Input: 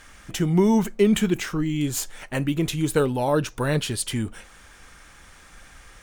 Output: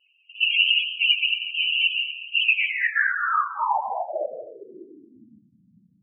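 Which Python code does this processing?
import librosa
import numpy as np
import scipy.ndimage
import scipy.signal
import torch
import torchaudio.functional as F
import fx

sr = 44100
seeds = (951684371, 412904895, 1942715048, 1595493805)

y = fx.rider(x, sr, range_db=5, speed_s=0.5)
y = fx.noise_vocoder(y, sr, seeds[0], bands=1)
y = fx.echo_swing(y, sr, ms=996, ratio=1.5, feedback_pct=47, wet_db=-14.5)
y = fx.filter_sweep_lowpass(y, sr, from_hz=2800.0, to_hz=180.0, start_s=2.45, end_s=5.55, q=6.4)
y = fx.peak_eq(y, sr, hz=1100.0, db=-7.5, octaves=0.93, at=(0.63, 2.77))
y = fx.spec_topn(y, sr, count=8)
y = fx.rev_gated(y, sr, seeds[1], gate_ms=280, shape='rising', drr_db=10.0)
y = fx.env_lowpass(y, sr, base_hz=960.0, full_db=-16.5)
y = fx.peak_eq(y, sr, hz=160.0, db=-14.5, octaves=1.2)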